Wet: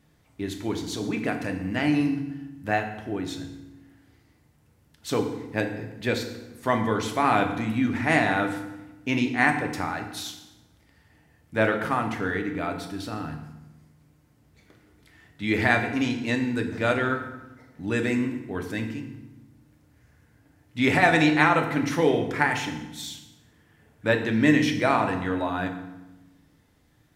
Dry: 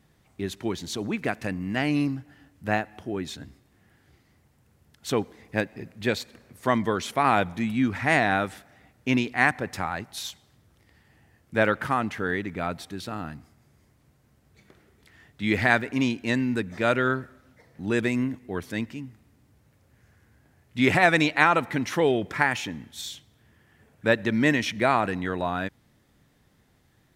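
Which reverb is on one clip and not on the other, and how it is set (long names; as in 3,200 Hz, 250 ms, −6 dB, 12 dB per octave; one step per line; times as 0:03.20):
feedback delay network reverb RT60 1 s, low-frequency decay 1.5×, high-frequency decay 0.8×, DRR 3.5 dB
level −1.5 dB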